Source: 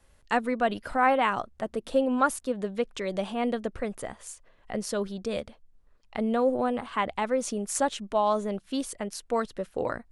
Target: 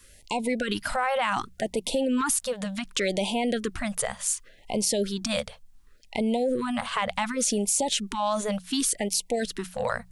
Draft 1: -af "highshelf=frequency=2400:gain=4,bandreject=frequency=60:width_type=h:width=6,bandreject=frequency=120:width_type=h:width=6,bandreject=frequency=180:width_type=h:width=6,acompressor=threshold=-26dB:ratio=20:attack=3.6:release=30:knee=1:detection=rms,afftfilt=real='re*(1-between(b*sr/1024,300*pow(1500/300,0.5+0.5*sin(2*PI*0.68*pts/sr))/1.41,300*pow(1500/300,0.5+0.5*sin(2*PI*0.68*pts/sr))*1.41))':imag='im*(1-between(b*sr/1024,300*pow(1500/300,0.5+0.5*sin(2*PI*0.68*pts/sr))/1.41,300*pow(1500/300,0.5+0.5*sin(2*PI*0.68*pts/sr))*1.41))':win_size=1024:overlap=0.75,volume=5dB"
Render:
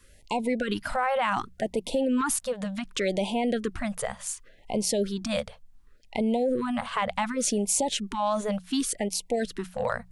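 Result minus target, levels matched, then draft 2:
4,000 Hz band −3.0 dB
-af "highshelf=frequency=2400:gain=12,bandreject=frequency=60:width_type=h:width=6,bandreject=frequency=120:width_type=h:width=6,bandreject=frequency=180:width_type=h:width=6,acompressor=threshold=-26dB:ratio=20:attack=3.6:release=30:knee=1:detection=rms,afftfilt=real='re*(1-between(b*sr/1024,300*pow(1500/300,0.5+0.5*sin(2*PI*0.68*pts/sr))/1.41,300*pow(1500/300,0.5+0.5*sin(2*PI*0.68*pts/sr))*1.41))':imag='im*(1-between(b*sr/1024,300*pow(1500/300,0.5+0.5*sin(2*PI*0.68*pts/sr))/1.41,300*pow(1500/300,0.5+0.5*sin(2*PI*0.68*pts/sr))*1.41))':win_size=1024:overlap=0.75,volume=5dB"

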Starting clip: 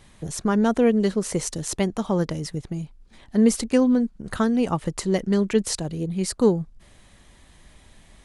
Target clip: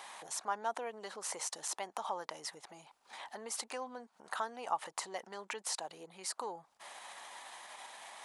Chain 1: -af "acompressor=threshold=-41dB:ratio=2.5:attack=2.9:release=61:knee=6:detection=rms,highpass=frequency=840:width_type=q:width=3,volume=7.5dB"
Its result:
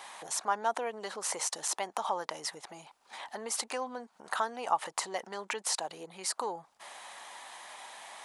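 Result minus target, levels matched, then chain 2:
downward compressor: peak gain reduction −6 dB
-af "acompressor=threshold=-51dB:ratio=2.5:attack=2.9:release=61:knee=6:detection=rms,highpass=frequency=840:width_type=q:width=3,volume=7.5dB"

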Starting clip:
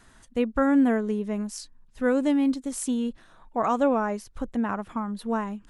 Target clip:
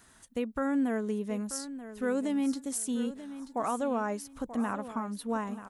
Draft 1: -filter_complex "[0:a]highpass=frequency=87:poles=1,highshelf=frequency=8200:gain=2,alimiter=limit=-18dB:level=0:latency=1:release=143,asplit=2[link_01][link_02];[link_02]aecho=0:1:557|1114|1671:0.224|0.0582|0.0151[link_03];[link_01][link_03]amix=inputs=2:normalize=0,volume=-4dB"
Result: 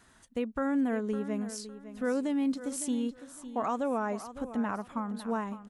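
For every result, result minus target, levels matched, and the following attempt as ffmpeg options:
echo 377 ms early; 8,000 Hz band −3.5 dB
-filter_complex "[0:a]highpass=frequency=87:poles=1,highshelf=frequency=8200:gain=2,alimiter=limit=-18dB:level=0:latency=1:release=143,asplit=2[link_01][link_02];[link_02]aecho=0:1:934|1868|2802:0.224|0.0582|0.0151[link_03];[link_01][link_03]amix=inputs=2:normalize=0,volume=-4dB"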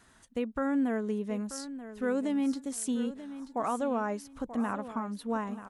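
8,000 Hz band −3.0 dB
-filter_complex "[0:a]highpass=frequency=87:poles=1,highshelf=frequency=8200:gain=13,alimiter=limit=-18dB:level=0:latency=1:release=143,asplit=2[link_01][link_02];[link_02]aecho=0:1:934|1868|2802:0.224|0.0582|0.0151[link_03];[link_01][link_03]amix=inputs=2:normalize=0,volume=-4dB"

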